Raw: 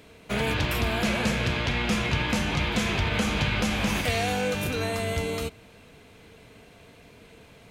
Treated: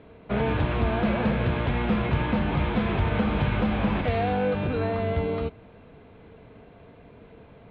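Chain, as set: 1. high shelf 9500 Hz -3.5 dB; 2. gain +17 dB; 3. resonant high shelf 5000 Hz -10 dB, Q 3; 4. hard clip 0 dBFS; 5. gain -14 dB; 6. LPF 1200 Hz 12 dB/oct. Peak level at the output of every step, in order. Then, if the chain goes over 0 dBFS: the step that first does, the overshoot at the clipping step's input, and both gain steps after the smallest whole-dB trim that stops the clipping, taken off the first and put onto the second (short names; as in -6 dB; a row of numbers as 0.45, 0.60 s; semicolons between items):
-12.0, +5.0, +6.5, 0.0, -14.0, -13.5 dBFS; step 2, 6.5 dB; step 2 +10 dB, step 5 -7 dB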